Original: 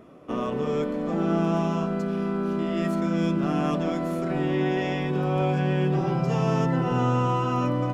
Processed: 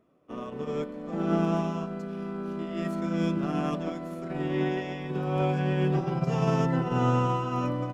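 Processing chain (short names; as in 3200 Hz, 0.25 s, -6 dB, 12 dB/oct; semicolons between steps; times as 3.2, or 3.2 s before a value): upward expander 2.5:1, over -33 dBFS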